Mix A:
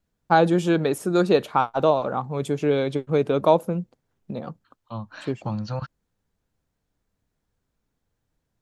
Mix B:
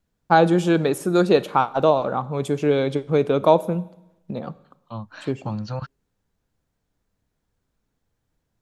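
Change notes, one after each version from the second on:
reverb: on, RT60 0.90 s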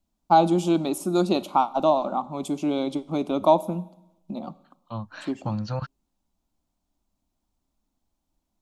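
first voice: add phaser with its sweep stopped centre 460 Hz, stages 6

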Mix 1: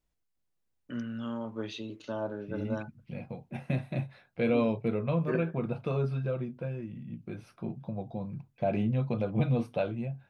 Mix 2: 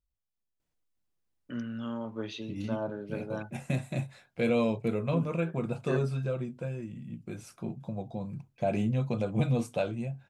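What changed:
first voice: entry +0.60 s
second voice: remove moving average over 6 samples

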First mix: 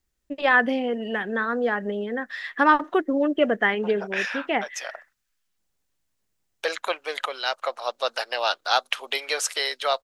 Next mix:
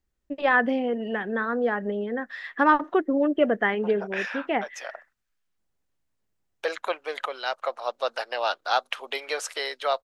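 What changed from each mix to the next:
master: add high-shelf EQ 2,400 Hz −9 dB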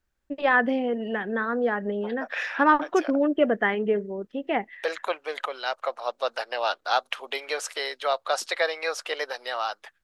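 second voice: entry −1.80 s

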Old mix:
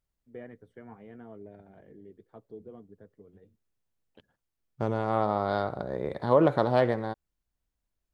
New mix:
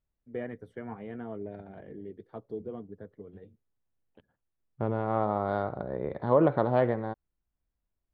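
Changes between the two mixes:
first voice +7.5 dB
second voice: add high-frequency loss of the air 430 metres

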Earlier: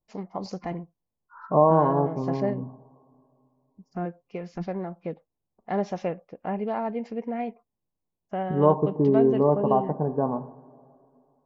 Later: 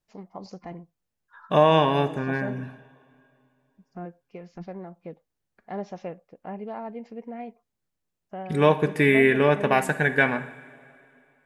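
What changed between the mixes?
first voice −6.5 dB
second voice: remove Chebyshev low-pass filter 1,100 Hz, order 6

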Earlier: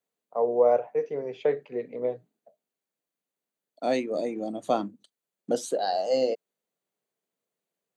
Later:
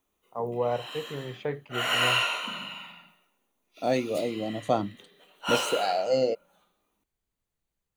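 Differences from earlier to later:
first voice: add flat-topped bell 530 Hz −8 dB 1 octave
background: unmuted
reverb: on, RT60 1.0 s
master: remove high-pass filter 180 Hz 24 dB per octave

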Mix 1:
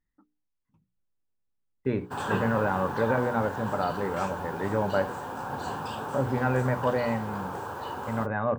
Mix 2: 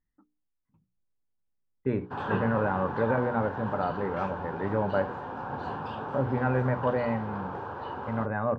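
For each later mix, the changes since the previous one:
master: add high-frequency loss of the air 300 metres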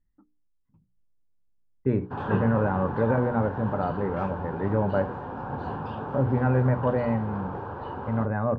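master: add spectral tilt −2 dB per octave

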